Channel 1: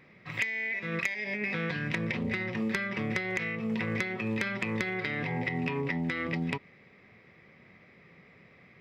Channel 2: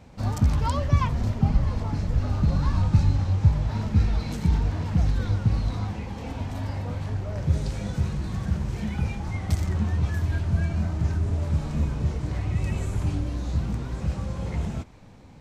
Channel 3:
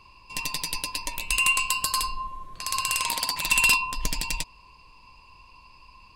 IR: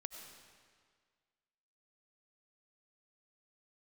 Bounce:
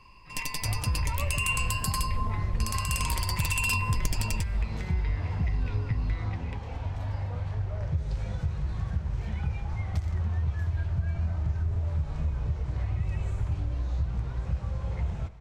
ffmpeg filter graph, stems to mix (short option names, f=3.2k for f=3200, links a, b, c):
-filter_complex "[0:a]volume=-13dB[a];[1:a]lowpass=f=2.7k:p=1,equalizer=f=240:w=1.2:g=-13.5,acompressor=threshold=-26dB:ratio=6,adelay=450,volume=-4.5dB,asplit=2[b][c];[c]volume=-7dB[d];[2:a]equalizer=f=3.9k:t=o:w=0.23:g=-10,volume=-3.5dB,asplit=2[e][f];[f]volume=-16.5dB[g];[3:a]atrim=start_sample=2205[h];[d][g]amix=inputs=2:normalize=0[i];[i][h]afir=irnorm=-1:irlink=0[j];[a][b][e][j]amix=inputs=4:normalize=0,lowshelf=f=200:g=5,alimiter=limit=-16.5dB:level=0:latency=1:release=144"